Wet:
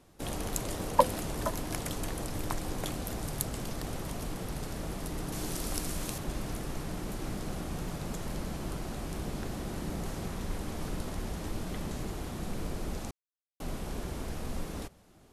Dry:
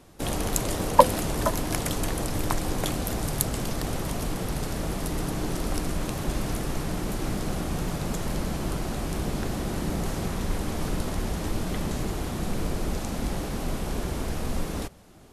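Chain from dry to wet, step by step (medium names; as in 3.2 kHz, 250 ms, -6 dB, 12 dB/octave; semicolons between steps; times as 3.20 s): 5.32–6.18 s: treble shelf 3.6 kHz +10 dB; 13.11–13.60 s: mute; trim -7.5 dB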